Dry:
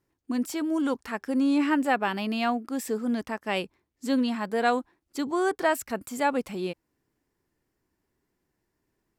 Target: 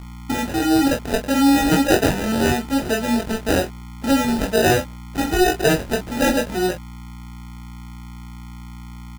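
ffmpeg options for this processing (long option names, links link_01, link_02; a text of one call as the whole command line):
ffmpeg -i in.wav -filter_complex "[0:a]asplit=2[link_01][link_02];[link_02]acompressor=threshold=-35dB:ratio=6,volume=1dB[link_03];[link_01][link_03]amix=inputs=2:normalize=0,bass=frequency=250:gain=-5,treble=frequency=4000:gain=-2,aeval=exprs='val(0)+0.0112*(sin(2*PI*60*n/s)+sin(2*PI*2*60*n/s)/2+sin(2*PI*3*60*n/s)/3+sin(2*PI*4*60*n/s)/4+sin(2*PI*5*60*n/s)/5)':channel_layout=same,acrusher=samples=40:mix=1:aa=0.000001,aecho=1:1:22|47:0.668|0.299,volume=5dB" out.wav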